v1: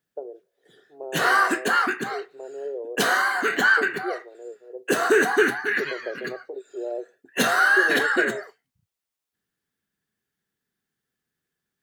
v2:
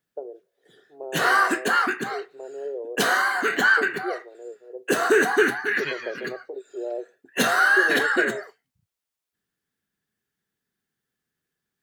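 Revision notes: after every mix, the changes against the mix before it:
second voice +5.5 dB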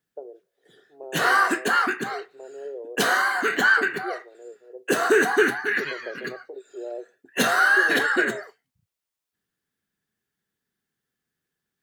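first voice -3.5 dB; second voice -4.5 dB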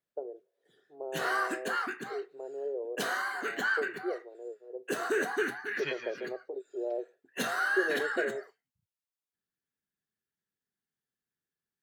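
background -11.5 dB

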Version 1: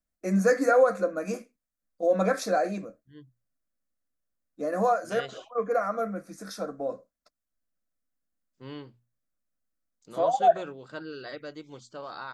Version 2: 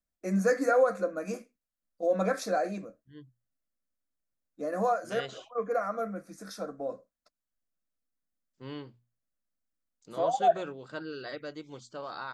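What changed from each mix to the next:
first voice -3.5 dB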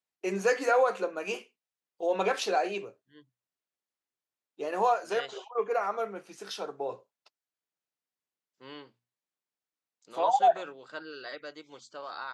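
first voice: remove static phaser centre 590 Hz, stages 8; master: add frequency weighting A

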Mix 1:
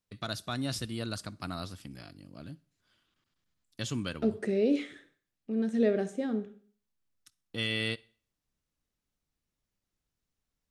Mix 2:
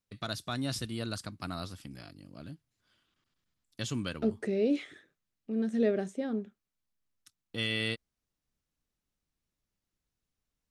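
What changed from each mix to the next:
reverb: off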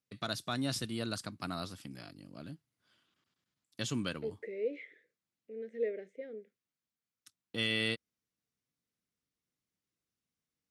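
second voice: add two resonant band-passes 1 kHz, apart 2.1 oct; master: add high-pass 120 Hz 12 dB/octave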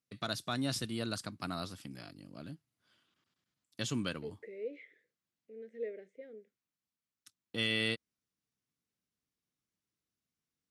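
second voice -5.5 dB

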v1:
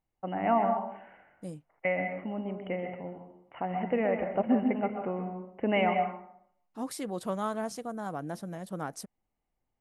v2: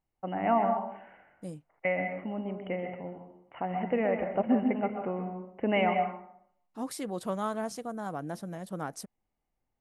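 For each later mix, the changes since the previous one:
no change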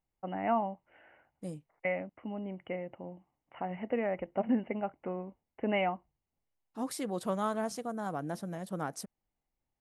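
reverb: off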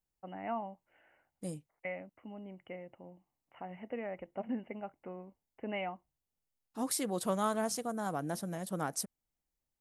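first voice -8.0 dB; master: add treble shelf 4.9 kHz +10 dB

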